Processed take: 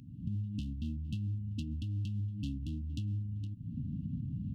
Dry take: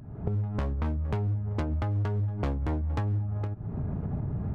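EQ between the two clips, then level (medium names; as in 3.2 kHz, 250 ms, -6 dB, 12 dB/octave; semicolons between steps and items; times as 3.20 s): high-pass 220 Hz 6 dB/octave; brick-wall FIR band-stop 300–2600 Hz; 0.0 dB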